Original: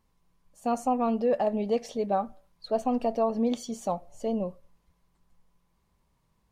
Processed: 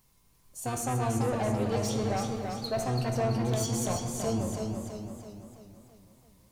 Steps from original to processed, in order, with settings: octaver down 1 oct, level +2 dB; pre-emphasis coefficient 0.8; in parallel at 0 dB: compressor, threshold -45 dBFS, peak gain reduction 12 dB; on the sum: soft clip -35.5 dBFS, distortion -11 dB; on a send at -3 dB: reverb RT60 1.4 s, pre-delay 4 ms; on the sum: warbling echo 0.332 s, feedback 50%, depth 62 cents, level -5 dB; gain +8 dB

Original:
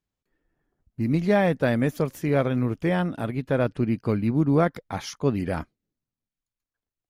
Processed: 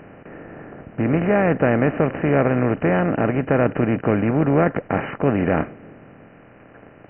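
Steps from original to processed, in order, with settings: per-bin compression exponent 0.4; brick-wall FIR low-pass 3000 Hz

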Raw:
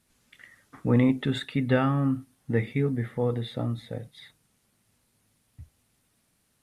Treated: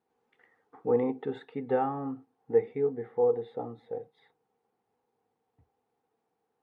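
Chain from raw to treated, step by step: double band-pass 600 Hz, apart 0.73 oct; gain +6.5 dB

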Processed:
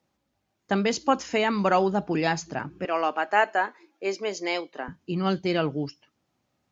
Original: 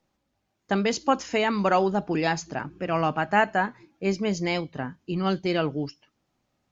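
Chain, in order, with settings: HPF 53 Hz 24 dB/oct, from 2.85 s 330 Hz, from 4.88 s 58 Hz

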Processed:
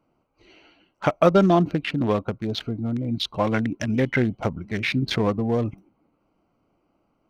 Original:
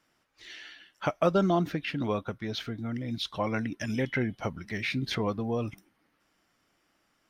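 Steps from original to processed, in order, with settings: Wiener smoothing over 25 samples; gain +8 dB

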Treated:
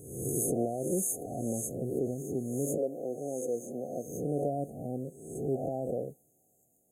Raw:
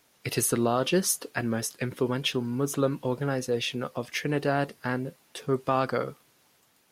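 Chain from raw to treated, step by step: spectral swells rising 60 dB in 0.86 s; 2.77–4.04 HPF 390 Hz -> 170 Hz 12 dB/oct; limiter -14.5 dBFS, peak gain reduction 5 dB; brick-wall FIR band-stop 790–6300 Hz; gain -5.5 dB

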